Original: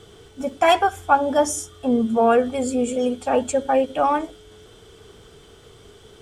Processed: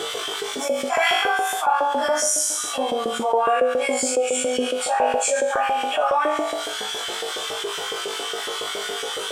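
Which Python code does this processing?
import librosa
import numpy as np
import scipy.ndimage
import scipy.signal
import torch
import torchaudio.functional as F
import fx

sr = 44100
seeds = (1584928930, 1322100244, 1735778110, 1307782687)

p1 = fx.stretch_vocoder_free(x, sr, factor=1.5)
p2 = p1 + fx.room_flutter(p1, sr, wall_m=3.4, rt60_s=0.62, dry=0)
p3 = fx.filter_lfo_highpass(p2, sr, shape='saw_up', hz=7.2, low_hz=450.0, high_hz=1700.0, q=1.2)
p4 = fx.env_flatten(p3, sr, amount_pct=70)
y = F.gain(torch.from_numpy(p4), -7.0).numpy()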